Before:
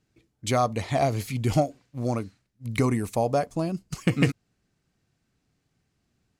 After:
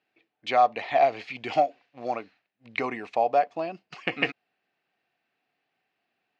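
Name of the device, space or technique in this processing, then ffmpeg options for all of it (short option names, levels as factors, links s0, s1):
phone earpiece: -filter_complex "[0:a]asettb=1/sr,asplit=3[s0][s1][s2];[s0]atrim=end=1.344[s3];[s1]atrim=start=1.34:end=2.16,asetpts=PTS-STARTPTS,afade=t=in:d=0.004:c=qsin,afade=t=out:st=0.816:d=0.004:c=qsin,highshelf=f=4900:g=5.5[s4];[s2]atrim=start=2.156[s5];[s3][s4]acrossfade=d=0.004:c1=hsin:c2=qsin[s6];[s6][s5]acrossfade=d=0.004:c1=qsin:c2=hsin,highpass=440,equalizer=f=740:t=q:w=4:g=9,equalizer=f=1800:t=q:w=4:g=5,equalizer=f=2600:t=q:w=4:g=8,lowpass=f=4100:w=0.5412,lowpass=f=4100:w=1.3066,volume=0.841"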